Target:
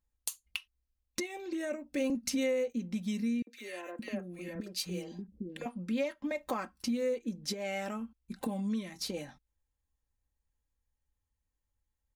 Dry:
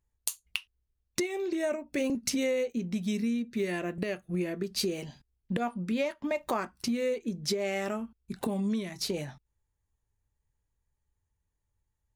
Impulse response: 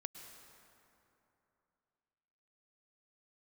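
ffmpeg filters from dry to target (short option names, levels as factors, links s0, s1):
-filter_complex "[0:a]aecho=1:1:3.8:0.57,asettb=1/sr,asplit=3[s0][s1][s2];[s0]atrim=end=3.424[s3];[s1]atrim=start=3.42:end=5.66,asetpts=PTS-STARTPTS,afade=t=in:d=0.004:c=qsin,afade=t=out:st=2.236:d=0.004:c=qsin,acrossover=split=360|1600[s4][s5][s6];[s5]adelay=50[s7];[s4]adelay=570[s8];[s8][s7][s6]amix=inputs=3:normalize=0,atrim=end_sample=98784[s9];[s2]atrim=start=5.656[s10];[s3][s9]acrossfade=d=0.004:c1=hsin:c2=qsin[s11];[s11][s10]acrossfade=d=0.004:c1=qsin:c2=hsin,volume=0.531"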